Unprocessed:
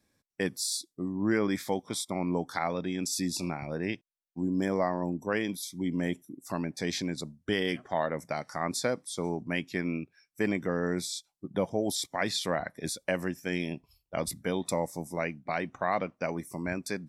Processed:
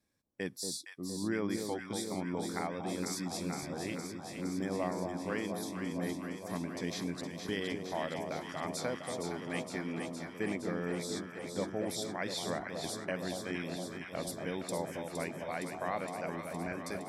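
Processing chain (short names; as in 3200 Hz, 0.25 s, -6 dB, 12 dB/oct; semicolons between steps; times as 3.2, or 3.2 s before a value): echo with dull and thin repeats by turns 0.232 s, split 1000 Hz, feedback 87%, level -5 dB; gain -7.5 dB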